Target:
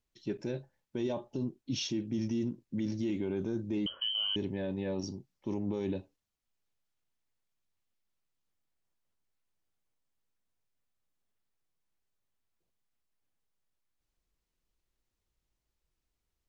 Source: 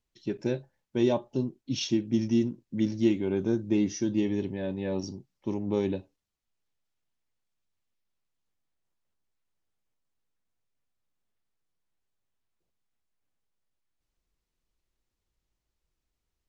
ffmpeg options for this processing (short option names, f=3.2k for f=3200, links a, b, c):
-filter_complex "[0:a]asettb=1/sr,asplit=3[a][b][c];[a]atrim=end=3.864[d];[b]atrim=start=3.86:end=4.36,asetpts=PTS-STARTPTS,afade=t=in:d=0.004:c=qsin,afade=t=out:st=0.496:d=0.004:c=qsin,lowpass=f=2.8k:t=q:w=0.5098,lowpass=f=2.8k:t=q:w=0.6013,lowpass=f=2.8k:t=q:w=0.9,lowpass=f=2.8k:t=q:w=2.563,afreqshift=-3300[e];[c]atrim=start=4.356[f];[d][e]acrossfade=d=0.004:c1=hsin:c2=qsin[g];[g][f]acrossfade=d=0.004:c1=qsin:c2=hsin,alimiter=limit=-24dB:level=0:latency=1:release=24,volume=-1.5dB"